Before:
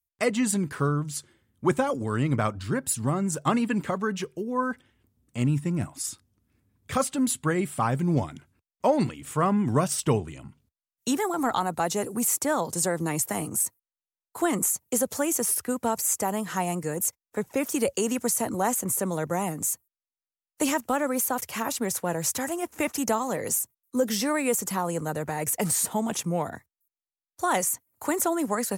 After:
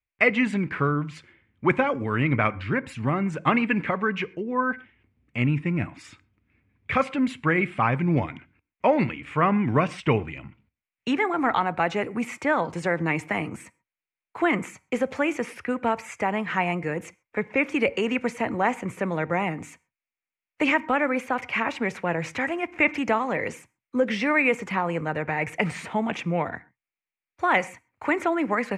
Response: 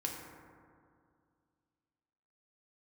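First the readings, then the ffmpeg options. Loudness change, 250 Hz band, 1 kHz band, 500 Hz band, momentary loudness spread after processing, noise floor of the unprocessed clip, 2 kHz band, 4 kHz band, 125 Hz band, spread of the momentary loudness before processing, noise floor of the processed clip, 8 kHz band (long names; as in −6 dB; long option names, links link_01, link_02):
+1.5 dB, +1.5 dB, +3.0 dB, +1.5 dB, 9 LU, below −85 dBFS, +9.5 dB, −0.5 dB, +1.0 dB, 6 LU, below −85 dBFS, −21.0 dB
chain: -filter_complex "[0:a]lowpass=frequency=2300:width_type=q:width=4.5,asplit=2[link_01][link_02];[1:a]atrim=start_sample=2205,atrim=end_sample=6174[link_03];[link_02][link_03]afir=irnorm=-1:irlink=0,volume=-15dB[link_04];[link_01][link_04]amix=inputs=2:normalize=0"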